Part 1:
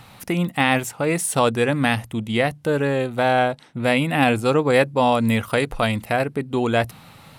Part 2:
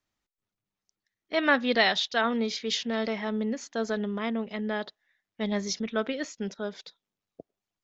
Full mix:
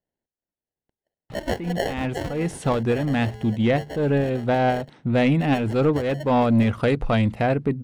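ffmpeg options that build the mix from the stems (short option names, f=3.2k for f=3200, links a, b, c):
-filter_complex "[0:a]lowpass=8.3k,lowshelf=f=480:g=9,acontrast=84,adelay=1300,volume=-9.5dB[a];[1:a]highpass=730,highshelf=f=2.3k:g=-9,acrusher=samples=36:mix=1:aa=0.000001,volume=2dB,asplit=2[b][c];[c]apad=whole_len=383061[d];[a][d]sidechaincompress=threshold=-35dB:ratio=8:attack=16:release=284[e];[e][b]amix=inputs=2:normalize=0,highshelf=f=6.6k:g=-11"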